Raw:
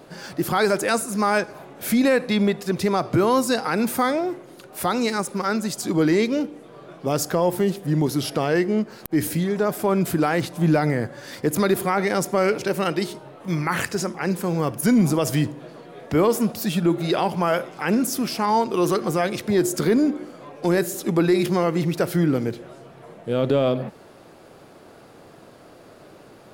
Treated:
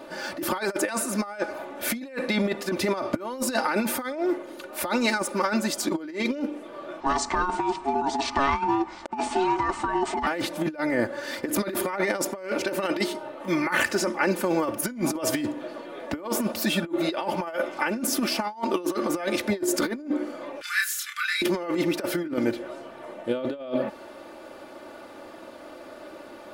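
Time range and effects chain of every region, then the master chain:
7.00–10.27 s: ring modulator 550 Hz + steep low-pass 8.7 kHz 72 dB/octave
20.61–21.42 s: steep high-pass 1.3 kHz 72 dB/octave + doubling 30 ms -3 dB + upward compressor, threshold -38 dBFS
whole clip: tone controls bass -10 dB, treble -6 dB; comb 3.4 ms, depth 70%; compressor with a negative ratio -25 dBFS, ratio -0.5

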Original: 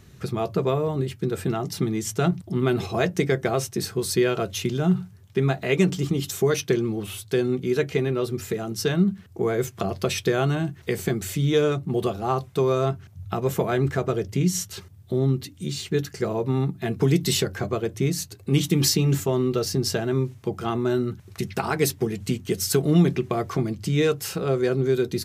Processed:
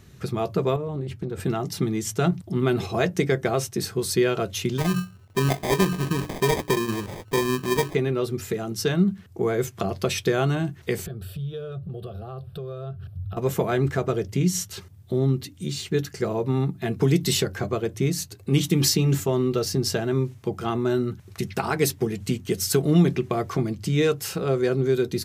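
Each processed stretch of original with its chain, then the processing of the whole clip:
0.76–1.40 s: tilt EQ -1.5 dB/octave + compression 5:1, threshold -26 dBFS + loudspeaker Doppler distortion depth 0.14 ms
4.78–7.95 s: hum notches 60/120/180/240/300/360/420 Hz + sample-rate reducer 1.4 kHz
11.06–13.37 s: compression 3:1, threshold -40 dBFS + bass shelf 410 Hz +12 dB + static phaser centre 1.4 kHz, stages 8
whole clip: none

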